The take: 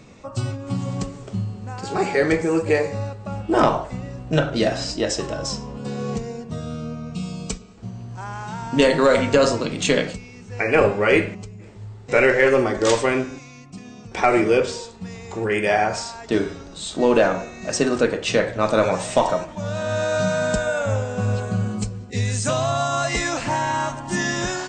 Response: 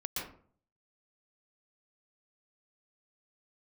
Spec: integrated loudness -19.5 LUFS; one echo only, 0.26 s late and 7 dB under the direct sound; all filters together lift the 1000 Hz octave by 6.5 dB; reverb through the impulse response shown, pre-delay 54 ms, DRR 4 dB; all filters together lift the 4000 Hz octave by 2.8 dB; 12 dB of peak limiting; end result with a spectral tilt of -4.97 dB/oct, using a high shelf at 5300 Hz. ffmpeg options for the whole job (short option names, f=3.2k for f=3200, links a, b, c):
-filter_complex "[0:a]equalizer=f=1k:t=o:g=8.5,equalizer=f=4k:t=o:g=6.5,highshelf=f=5.3k:g=-8,alimiter=limit=-10.5dB:level=0:latency=1,aecho=1:1:260:0.447,asplit=2[a][b];[1:a]atrim=start_sample=2205,adelay=54[c];[b][c]afir=irnorm=-1:irlink=0,volume=-6.5dB[d];[a][d]amix=inputs=2:normalize=0,volume=1dB"